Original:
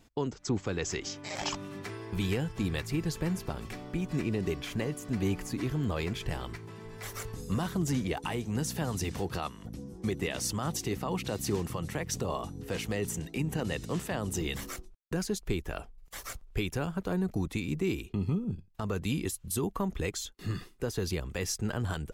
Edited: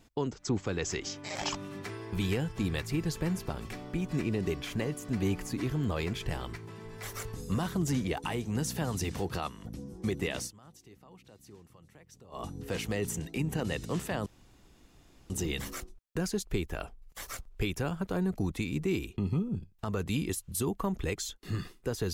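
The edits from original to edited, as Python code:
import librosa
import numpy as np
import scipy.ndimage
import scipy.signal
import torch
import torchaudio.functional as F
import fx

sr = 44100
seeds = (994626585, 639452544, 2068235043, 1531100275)

y = fx.edit(x, sr, fx.fade_down_up(start_s=10.38, length_s=2.06, db=-22.0, fade_s=0.13),
    fx.insert_room_tone(at_s=14.26, length_s=1.04), tone=tone)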